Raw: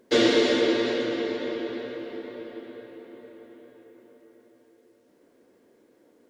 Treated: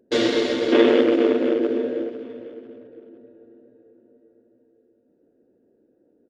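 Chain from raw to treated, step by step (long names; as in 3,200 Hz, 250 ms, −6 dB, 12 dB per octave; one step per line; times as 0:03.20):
adaptive Wiener filter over 41 samples
gain on a spectral selection 0:00.73–0:02.09, 220–3,600 Hz +12 dB
repeating echo 502 ms, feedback 37%, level −15 dB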